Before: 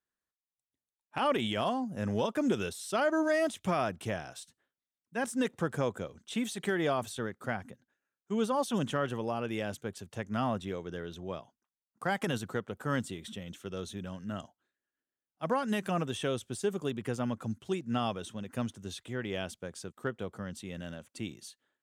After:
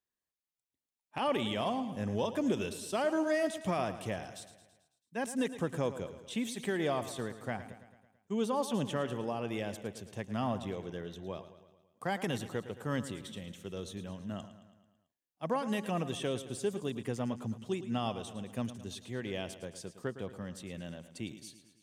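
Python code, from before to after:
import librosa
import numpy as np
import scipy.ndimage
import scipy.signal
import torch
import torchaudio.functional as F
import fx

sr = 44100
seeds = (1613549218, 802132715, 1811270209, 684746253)

p1 = fx.peak_eq(x, sr, hz=1400.0, db=-7.0, octaves=0.36)
p2 = p1 + fx.echo_feedback(p1, sr, ms=110, feedback_pct=57, wet_db=-13, dry=0)
y = p2 * librosa.db_to_amplitude(-2.0)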